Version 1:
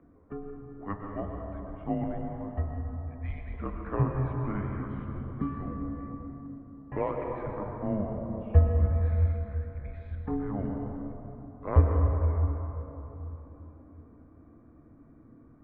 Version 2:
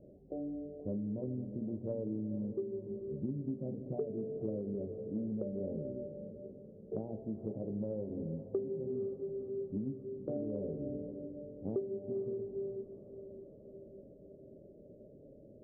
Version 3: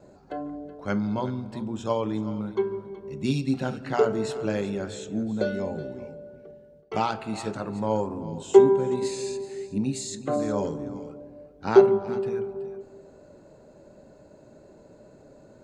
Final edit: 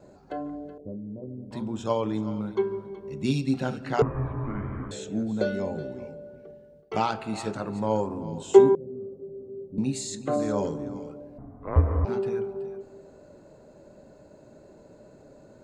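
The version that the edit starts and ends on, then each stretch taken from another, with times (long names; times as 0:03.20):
3
0:00.78–0:01.51: punch in from 2
0:04.02–0:04.91: punch in from 1
0:08.75–0:09.78: punch in from 2
0:11.38–0:12.05: punch in from 1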